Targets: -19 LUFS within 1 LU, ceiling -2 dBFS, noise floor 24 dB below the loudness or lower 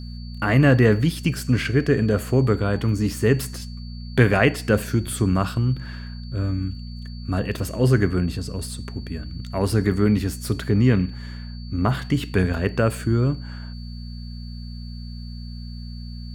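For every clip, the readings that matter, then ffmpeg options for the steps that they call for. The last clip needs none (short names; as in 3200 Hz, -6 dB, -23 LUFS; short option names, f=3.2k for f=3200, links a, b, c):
hum 60 Hz; harmonics up to 240 Hz; hum level -32 dBFS; steady tone 4500 Hz; tone level -46 dBFS; loudness -22.0 LUFS; peak -2.0 dBFS; loudness target -19.0 LUFS
-> -af "bandreject=f=60:t=h:w=4,bandreject=f=120:t=h:w=4,bandreject=f=180:t=h:w=4,bandreject=f=240:t=h:w=4"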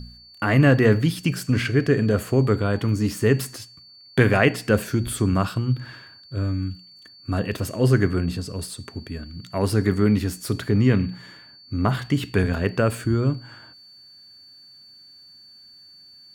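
hum none; steady tone 4500 Hz; tone level -46 dBFS
-> -af "bandreject=f=4.5k:w=30"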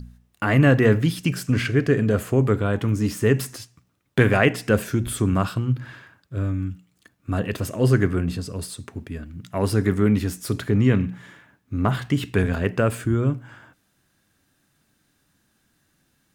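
steady tone none; loudness -22.0 LUFS; peak -3.5 dBFS; loudness target -19.0 LUFS
-> -af "volume=3dB,alimiter=limit=-2dB:level=0:latency=1"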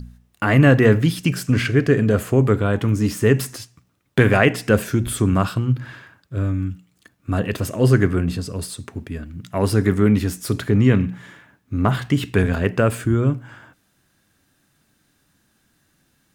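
loudness -19.5 LUFS; peak -2.0 dBFS; noise floor -65 dBFS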